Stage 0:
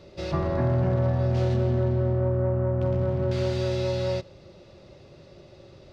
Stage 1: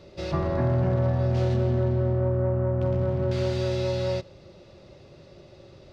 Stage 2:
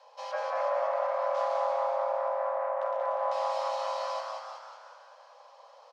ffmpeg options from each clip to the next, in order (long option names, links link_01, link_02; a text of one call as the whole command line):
ffmpeg -i in.wav -af anull out.wav
ffmpeg -i in.wav -filter_complex "[0:a]asplit=2[link_01][link_02];[link_02]aecho=0:1:183|366|549|732|915:0.447|0.201|0.0905|0.0407|0.0183[link_03];[link_01][link_03]amix=inputs=2:normalize=0,afreqshift=450,asplit=2[link_04][link_05];[link_05]asplit=6[link_06][link_07][link_08][link_09][link_10][link_11];[link_06]adelay=190,afreqshift=110,volume=-7dB[link_12];[link_07]adelay=380,afreqshift=220,volume=-12.7dB[link_13];[link_08]adelay=570,afreqshift=330,volume=-18.4dB[link_14];[link_09]adelay=760,afreqshift=440,volume=-24dB[link_15];[link_10]adelay=950,afreqshift=550,volume=-29.7dB[link_16];[link_11]adelay=1140,afreqshift=660,volume=-35.4dB[link_17];[link_12][link_13][link_14][link_15][link_16][link_17]amix=inputs=6:normalize=0[link_18];[link_04][link_18]amix=inputs=2:normalize=0,volume=-7.5dB" out.wav